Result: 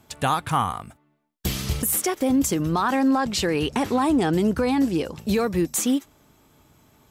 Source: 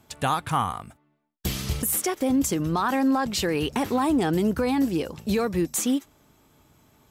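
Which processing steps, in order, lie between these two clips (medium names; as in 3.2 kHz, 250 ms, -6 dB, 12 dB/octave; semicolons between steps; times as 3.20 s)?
2.84–5.16 s: low-pass 11 kHz 12 dB/octave; trim +2 dB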